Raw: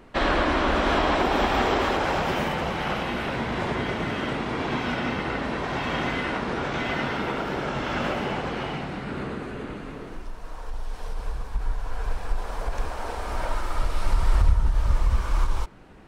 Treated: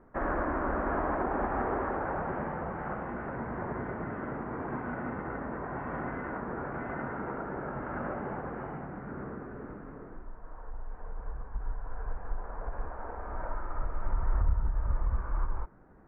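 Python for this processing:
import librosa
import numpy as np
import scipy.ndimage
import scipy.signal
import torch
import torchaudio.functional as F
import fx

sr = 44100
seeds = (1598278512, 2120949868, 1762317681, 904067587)

y = scipy.signal.sosfilt(scipy.signal.butter(6, 1700.0, 'lowpass', fs=sr, output='sos'), x)
y = y * 10.0 ** (-8.0 / 20.0)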